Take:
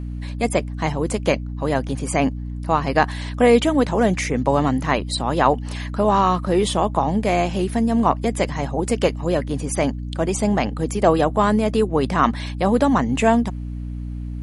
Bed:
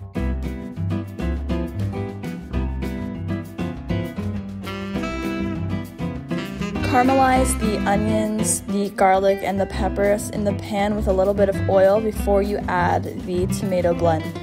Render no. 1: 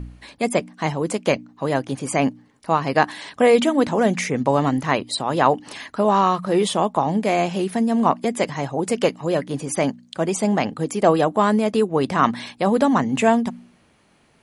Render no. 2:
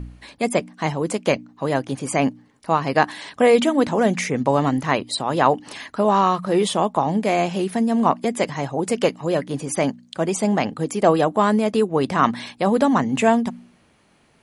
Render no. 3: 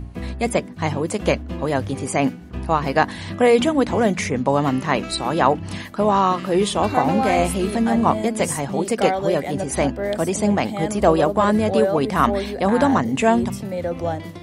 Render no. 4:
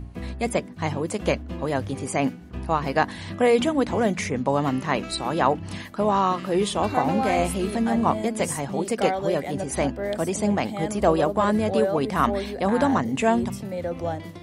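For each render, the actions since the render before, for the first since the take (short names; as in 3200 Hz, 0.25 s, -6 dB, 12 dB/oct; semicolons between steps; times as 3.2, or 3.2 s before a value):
de-hum 60 Hz, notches 5
nothing audible
add bed -6 dB
gain -4 dB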